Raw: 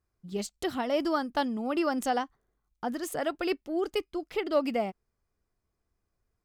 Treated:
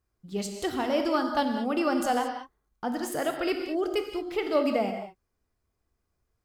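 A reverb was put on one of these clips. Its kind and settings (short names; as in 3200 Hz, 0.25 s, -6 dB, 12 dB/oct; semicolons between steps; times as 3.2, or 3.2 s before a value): non-linear reverb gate 0.24 s flat, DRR 4 dB; gain +1 dB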